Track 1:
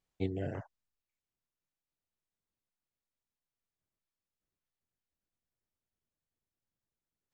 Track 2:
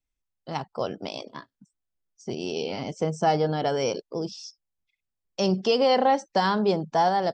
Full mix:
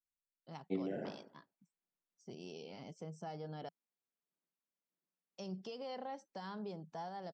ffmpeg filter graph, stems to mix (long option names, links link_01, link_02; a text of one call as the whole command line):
ffmpeg -i stem1.wav -i stem2.wav -filter_complex "[0:a]highpass=frequency=200:width=0.5412,highpass=frequency=200:width=1.3066,highshelf=frequency=3100:gain=-12,adelay=500,volume=-2.5dB,asplit=2[link_01][link_02];[link_02]volume=-8.5dB[link_03];[1:a]lowshelf=frequency=79:gain=-7.5,alimiter=limit=-18.5dB:level=0:latency=1:release=278,volume=-18.5dB,asplit=3[link_04][link_05][link_06];[link_04]atrim=end=3.69,asetpts=PTS-STARTPTS,afade=type=out:start_time=3.686:duration=0.004:curve=hsin[link_07];[link_05]atrim=start=3.69:end=5.37,asetpts=PTS-STARTPTS,volume=0[link_08];[link_06]atrim=start=5.37,asetpts=PTS-STARTPTS,afade=type=in:duration=0.004:curve=hsin[link_09];[link_07][link_08][link_09]concat=n=3:v=0:a=1[link_10];[link_03]aecho=0:1:60|120|180|240|300|360|420:1|0.49|0.24|0.118|0.0576|0.0282|0.0138[link_11];[link_01][link_10][link_11]amix=inputs=3:normalize=0,equalizer=frequency=170:width_type=o:width=0.48:gain=7" out.wav